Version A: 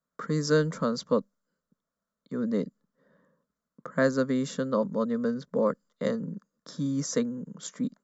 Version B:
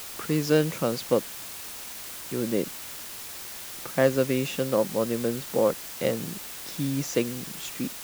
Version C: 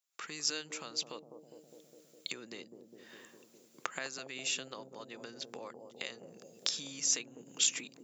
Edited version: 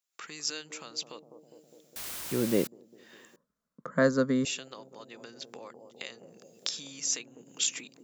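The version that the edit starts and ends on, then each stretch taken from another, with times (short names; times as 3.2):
C
1.96–2.67 from B
3.36–4.45 from A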